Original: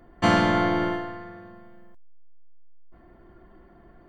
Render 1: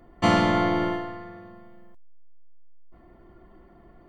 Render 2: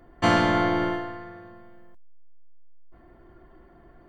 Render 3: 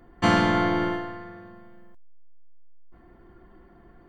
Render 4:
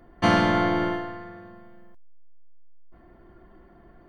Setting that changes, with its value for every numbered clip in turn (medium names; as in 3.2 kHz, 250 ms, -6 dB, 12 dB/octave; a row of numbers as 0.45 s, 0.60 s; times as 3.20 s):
band-stop, frequency: 1.6 kHz, 200 Hz, 620 Hz, 7.5 kHz